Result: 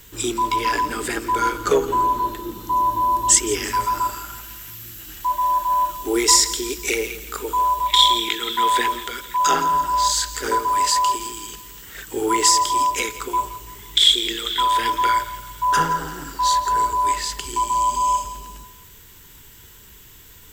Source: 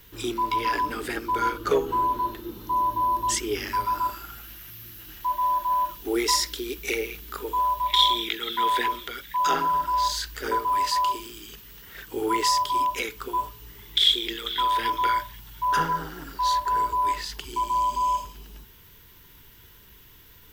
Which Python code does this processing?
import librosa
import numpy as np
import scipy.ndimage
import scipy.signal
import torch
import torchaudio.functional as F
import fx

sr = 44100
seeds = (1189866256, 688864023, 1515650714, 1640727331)

y = fx.peak_eq(x, sr, hz=7600.0, db=12.5, octaves=0.48)
y = fx.echo_feedback(y, sr, ms=168, feedback_pct=48, wet_db=-15.5)
y = F.gain(torch.from_numpy(y), 4.5).numpy()